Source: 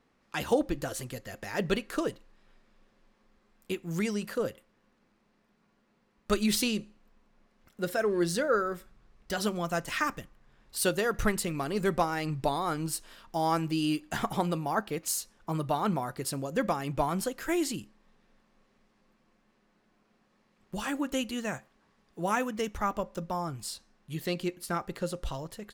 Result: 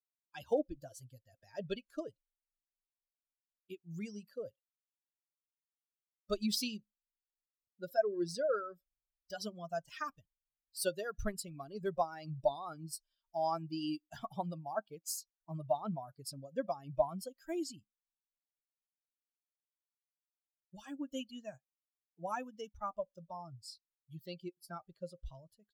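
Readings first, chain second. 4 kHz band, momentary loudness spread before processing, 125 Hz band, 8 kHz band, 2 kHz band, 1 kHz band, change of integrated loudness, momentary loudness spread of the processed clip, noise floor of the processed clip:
-8.5 dB, 10 LU, -11.5 dB, -10.5 dB, -14.5 dB, -9.0 dB, -8.5 dB, 16 LU, under -85 dBFS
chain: expander on every frequency bin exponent 2; graphic EQ with 31 bands 630 Hz +12 dB, 2 kHz -12 dB, 5 kHz +8 dB; trim -6 dB

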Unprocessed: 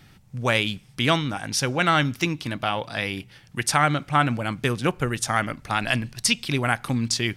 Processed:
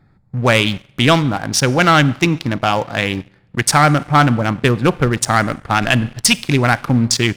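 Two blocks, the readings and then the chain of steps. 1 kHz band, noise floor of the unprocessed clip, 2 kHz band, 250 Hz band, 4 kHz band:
+8.5 dB, -53 dBFS, +7.5 dB, +10.0 dB, +7.0 dB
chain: local Wiener filter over 15 samples; Schroeder reverb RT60 0.97 s, combs from 32 ms, DRR 19.5 dB; waveshaping leveller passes 2; trim +3 dB

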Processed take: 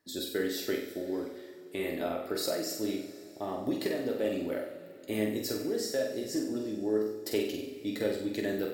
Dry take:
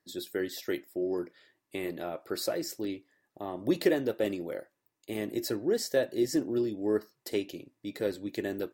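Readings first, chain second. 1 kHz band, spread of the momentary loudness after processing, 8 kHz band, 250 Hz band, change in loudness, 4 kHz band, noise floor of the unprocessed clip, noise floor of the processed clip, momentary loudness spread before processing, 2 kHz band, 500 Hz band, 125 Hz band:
+1.0 dB, 7 LU, +1.0 dB, -0.5 dB, -1.0 dB, +2.0 dB, -82 dBFS, -49 dBFS, 14 LU, 0.0 dB, -1.0 dB, -1.0 dB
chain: compression, threshold -28 dBFS, peak gain reduction 9 dB; on a send: flutter echo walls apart 8 m, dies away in 0.57 s; on the sum: gain riding within 3 dB 0.5 s; two-slope reverb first 0.22 s, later 3.3 s, from -18 dB, DRR 3.5 dB

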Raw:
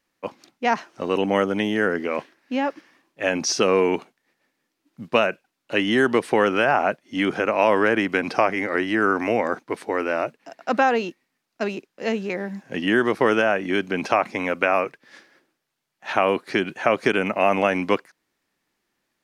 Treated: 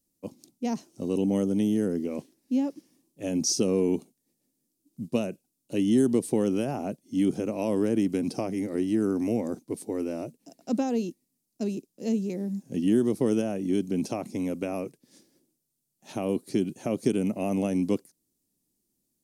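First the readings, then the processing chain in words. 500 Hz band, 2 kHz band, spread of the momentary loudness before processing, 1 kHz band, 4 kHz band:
-8.0 dB, -23.0 dB, 10 LU, -17.5 dB, -10.0 dB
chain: FFT filter 260 Hz 0 dB, 1.6 kHz -29 dB, 8.9 kHz +5 dB; trim +1.5 dB

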